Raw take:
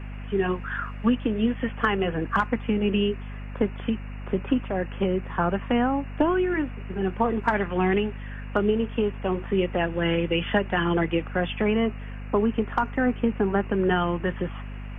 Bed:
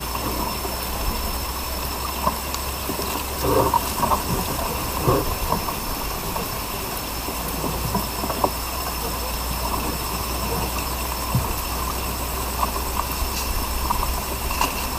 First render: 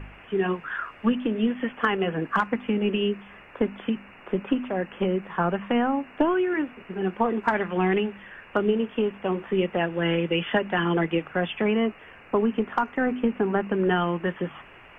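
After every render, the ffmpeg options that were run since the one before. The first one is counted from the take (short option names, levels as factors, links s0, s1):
-af "bandreject=f=50:t=h:w=4,bandreject=f=100:t=h:w=4,bandreject=f=150:t=h:w=4,bandreject=f=200:t=h:w=4,bandreject=f=250:t=h:w=4"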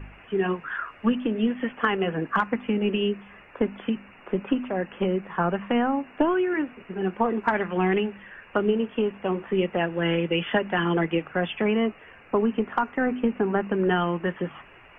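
-af "afftdn=nr=6:nf=-49"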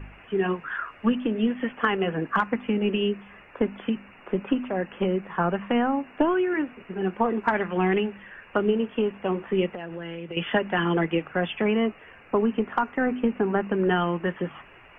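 -filter_complex "[0:a]asettb=1/sr,asplit=3[s0][s1][s2];[s0]atrim=end=9.674[s3];[s1]atrim=start=9.67:end=10.37,asetpts=PTS-STARTPTS,afade=t=in:d=0.004:c=qsin,afade=t=out:st=0.696:d=0.004:c=qsin,acompressor=threshold=0.0282:ratio=10:attack=3.2:release=140:knee=1:detection=peak[s4];[s2]atrim=start=10.366[s5];[s3][s4]acrossfade=d=0.004:c1=hsin:c2=qsin[s6];[s6][s5]acrossfade=d=0.004:c1=qsin:c2=hsin"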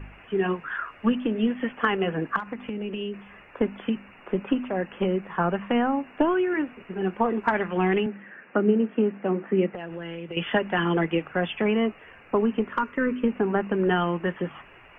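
-filter_complex "[0:a]asettb=1/sr,asplit=3[s0][s1][s2];[s0]atrim=end=2.364[s3];[s1]atrim=start=2.36:end=3.14,asetpts=PTS-STARTPTS,afade=t=in:d=0.004:c=qsin,afade=t=out:st=0.776:d=0.004:c=qsin,acompressor=threshold=0.0398:ratio=6:attack=3.2:release=140:knee=1:detection=peak[s4];[s2]atrim=start=3.136[s5];[s3][s4]acrossfade=d=0.004:c1=hsin:c2=qsin[s6];[s6][s5]acrossfade=d=0.004:c1=qsin:c2=hsin,asettb=1/sr,asplit=3[s7][s8][s9];[s7]atrim=end=8.064[s10];[s8]atrim=start=8.06:end=9.75,asetpts=PTS-STARTPTS,afade=t=in:d=0.004:c=qsin,afade=t=out:st=1.686:d=0.004:c=qsin,highpass=f=140:w=0.5412,highpass=f=140:w=1.3066,equalizer=f=210:t=q:w=4:g=4,equalizer=f=300:t=q:w=4:g=5,equalizer=f=1000:t=q:w=4:g=-6,lowpass=f=2300:w=0.5412,lowpass=f=2300:w=1.3066[s11];[s9]atrim=start=9.746[s12];[s10][s11]acrossfade=d=0.004:c1=hsin:c2=qsin[s13];[s13][s12]acrossfade=d=0.004:c1=qsin:c2=hsin,asettb=1/sr,asplit=3[s14][s15][s16];[s14]atrim=end=12.684[s17];[s15]atrim=start=12.68:end=13.28,asetpts=PTS-STARTPTS,afade=t=in:d=0.004:c=qsin,afade=t=out:st=0.596:d=0.004:c=qsin,asuperstop=centerf=760:order=4:qfactor=2.8[s18];[s16]atrim=start=13.276[s19];[s17][s18]acrossfade=d=0.004:c1=hsin:c2=qsin[s20];[s20][s19]acrossfade=d=0.004:c1=qsin:c2=hsin"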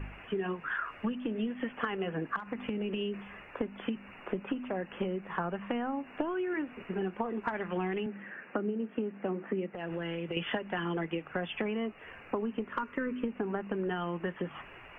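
-af "acompressor=threshold=0.0316:ratio=10"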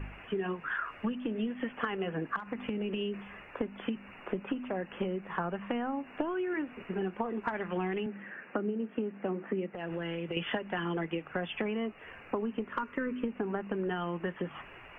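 -af anull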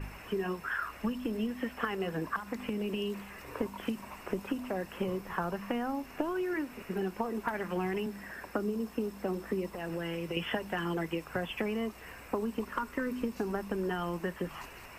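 -filter_complex "[1:a]volume=0.0398[s0];[0:a][s0]amix=inputs=2:normalize=0"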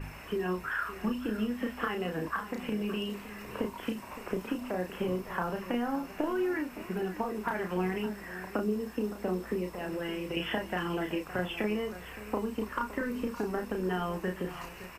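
-filter_complex "[0:a]asplit=2[s0][s1];[s1]adelay=33,volume=0.562[s2];[s0][s2]amix=inputs=2:normalize=0,aecho=1:1:565:0.188"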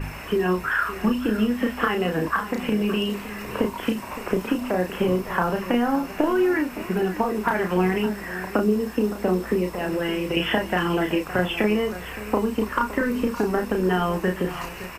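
-af "volume=3.16"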